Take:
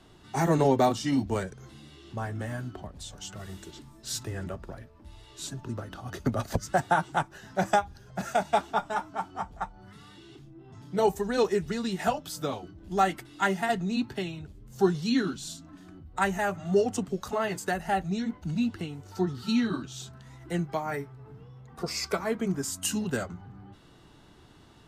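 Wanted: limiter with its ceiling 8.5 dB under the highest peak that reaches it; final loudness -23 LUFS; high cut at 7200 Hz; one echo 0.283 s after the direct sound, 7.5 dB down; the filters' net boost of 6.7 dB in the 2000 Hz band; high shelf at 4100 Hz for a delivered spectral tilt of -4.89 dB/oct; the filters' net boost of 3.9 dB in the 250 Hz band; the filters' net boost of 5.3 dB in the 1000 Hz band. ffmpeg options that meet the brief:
-af "lowpass=7.2k,equalizer=f=250:t=o:g=4.5,equalizer=f=1k:t=o:g=5.5,equalizer=f=2k:t=o:g=5.5,highshelf=f=4.1k:g=5.5,alimiter=limit=-14.5dB:level=0:latency=1,aecho=1:1:283:0.422,volume=4.5dB"

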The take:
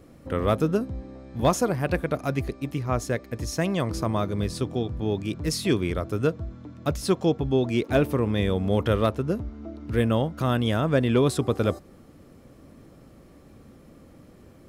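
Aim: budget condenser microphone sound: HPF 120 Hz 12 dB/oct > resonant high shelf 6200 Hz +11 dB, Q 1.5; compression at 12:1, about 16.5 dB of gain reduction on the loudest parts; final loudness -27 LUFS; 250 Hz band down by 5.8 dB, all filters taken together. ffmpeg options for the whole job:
-af "equalizer=f=250:t=o:g=-7.5,acompressor=threshold=-35dB:ratio=12,highpass=120,highshelf=f=6.2k:t=q:w=1.5:g=11,volume=12.5dB"

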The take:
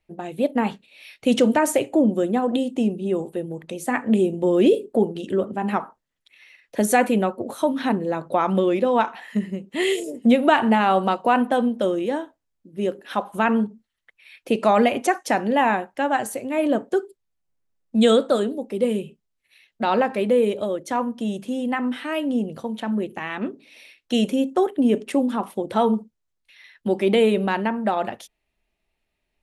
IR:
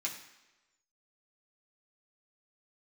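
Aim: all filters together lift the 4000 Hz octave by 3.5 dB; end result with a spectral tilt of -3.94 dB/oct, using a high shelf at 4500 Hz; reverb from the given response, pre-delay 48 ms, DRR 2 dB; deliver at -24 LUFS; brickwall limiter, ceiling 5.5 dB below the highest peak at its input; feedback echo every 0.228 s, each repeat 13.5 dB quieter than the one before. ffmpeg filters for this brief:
-filter_complex "[0:a]equalizer=f=4k:t=o:g=9,highshelf=f=4.5k:g=-8.5,alimiter=limit=-10dB:level=0:latency=1,aecho=1:1:228|456:0.211|0.0444,asplit=2[a][b];[1:a]atrim=start_sample=2205,adelay=48[c];[b][c]afir=irnorm=-1:irlink=0,volume=-4dB[d];[a][d]amix=inputs=2:normalize=0,volume=-2.5dB"

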